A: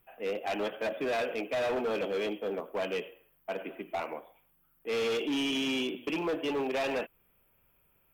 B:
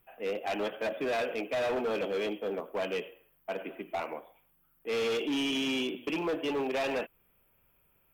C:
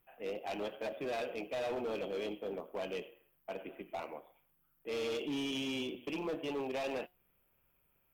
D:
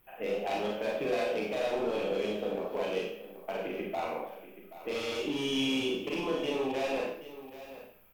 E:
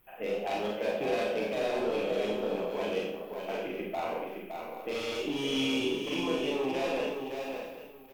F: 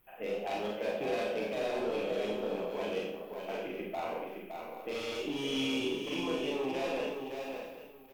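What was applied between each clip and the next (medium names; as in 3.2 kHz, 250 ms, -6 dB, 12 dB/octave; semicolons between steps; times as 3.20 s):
no audible change
dynamic bell 1.6 kHz, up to -5 dB, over -50 dBFS, Q 1.4; feedback comb 180 Hz, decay 0.26 s, harmonics all, mix 40%; AM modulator 140 Hz, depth 30%
compression, threshold -41 dBFS, peak gain reduction 7.5 dB; delay 779 ms -14.5 dB; Schroeder reverb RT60 0.5 s, combs from 30 ms, DRR -2 dB; trim +8 dB
delay 565 ms -6 dB
hard clipper -22 dBFS, distortion -30 dB; trim -3 dB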